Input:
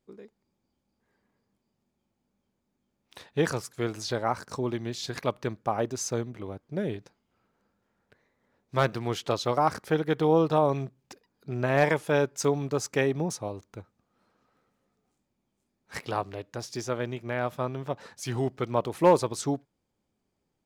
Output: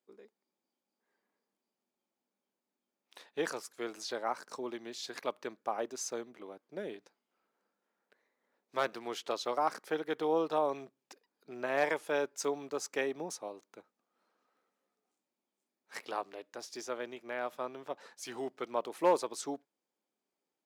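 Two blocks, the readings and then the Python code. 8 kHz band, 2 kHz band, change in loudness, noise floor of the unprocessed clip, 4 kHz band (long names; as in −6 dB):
−6.0 dB, −6.0 dB, −8.0 dB, −80 dBFS, −6.0 dB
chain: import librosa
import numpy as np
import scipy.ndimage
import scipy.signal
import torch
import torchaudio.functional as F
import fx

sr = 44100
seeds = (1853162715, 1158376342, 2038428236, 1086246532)

y = scipy.signal.sosfilt(scipy.signal.bessel(4, 360.0, 'highpass', norm='mag', fs=sr, output='sos'), x)
y = F.gain(torch.from_numpy(y), -6.0).numpy()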